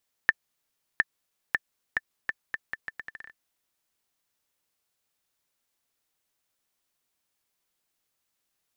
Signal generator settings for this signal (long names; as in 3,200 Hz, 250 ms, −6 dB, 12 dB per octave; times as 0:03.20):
bouncing ball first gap 0.71 s, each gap 0.77, 1,770 Hz, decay 34 ms −6 dBFS